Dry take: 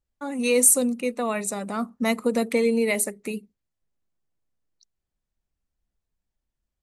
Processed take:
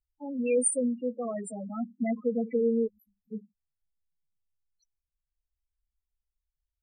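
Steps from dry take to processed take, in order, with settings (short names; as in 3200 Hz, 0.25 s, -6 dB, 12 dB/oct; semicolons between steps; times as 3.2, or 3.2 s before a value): 2.87–3.32 inverse Chebyshev band-stop 490–4900 Hz, stop band 80 dB; loudest bins only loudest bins 4; gain -3.5 dB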